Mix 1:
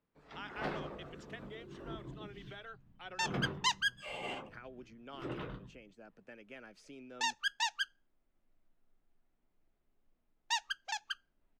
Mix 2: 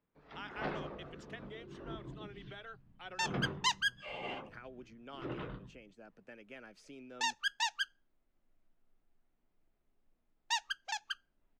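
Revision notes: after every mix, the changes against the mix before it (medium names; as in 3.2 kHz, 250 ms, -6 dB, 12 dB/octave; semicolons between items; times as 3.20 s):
first sound: add boxcar filter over 5 samples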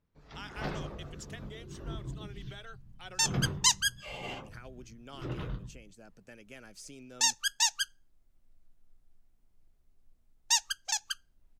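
master: remove three-band isolator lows -13 dB, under 190 Hz, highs -20 dB, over 3.5 kHz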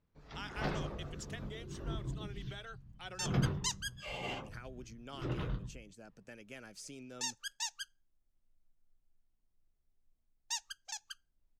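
second sound -11.5 dB; master: add treble shelf 12 kHz -4.5 dB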